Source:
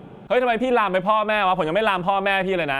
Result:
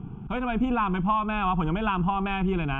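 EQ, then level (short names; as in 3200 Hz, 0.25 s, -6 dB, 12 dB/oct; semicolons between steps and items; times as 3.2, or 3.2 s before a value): RIAA curve playback; high shelf 9900 Hz -9.5 dB; fixed phaser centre 2800 Hz, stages 8; -3.5 dB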